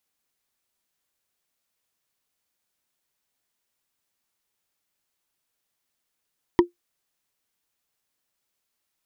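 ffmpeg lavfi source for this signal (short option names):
-f lavfi -i "aevalsrc='0.422*pow(10,-3*t/0.13)*sin(2*PI*349*t)+0.224*pow(10,-3*t/0.038)*sin(2*PI*962.2*t)+0.119*pow(10,-3*t/0.017)*sin(2*PI*1886*t)+0.0631*pow(10,-3*t/0.009)*sin(2*PI*3117.6*t)+0.0335*pow(10,-3*t/0.006)*sin(2*PI*4655.7*t)':d=0.45:s=44100"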